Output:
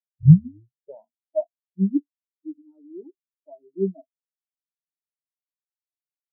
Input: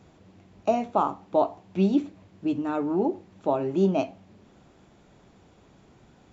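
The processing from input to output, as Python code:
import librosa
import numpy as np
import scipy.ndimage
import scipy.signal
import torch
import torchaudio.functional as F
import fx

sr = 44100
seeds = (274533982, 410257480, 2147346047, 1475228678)

y = fx.tape_start_head(x, sr, length_s=1.32)
y = fx.spectral_expand(y, sr, expansion=4.0)
y = F.gain(torch.from_numpy(y), 8.5).numpy()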